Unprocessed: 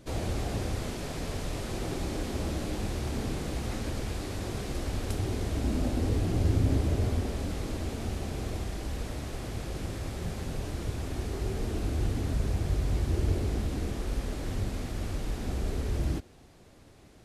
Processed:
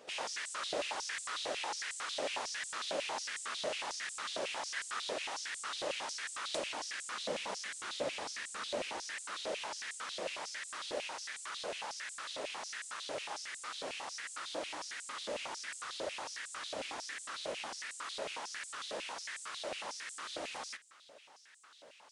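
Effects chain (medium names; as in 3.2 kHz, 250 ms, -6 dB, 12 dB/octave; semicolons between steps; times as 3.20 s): tape speed -22%; step-sequenced high-pass 11 Hz 590–7800 Hz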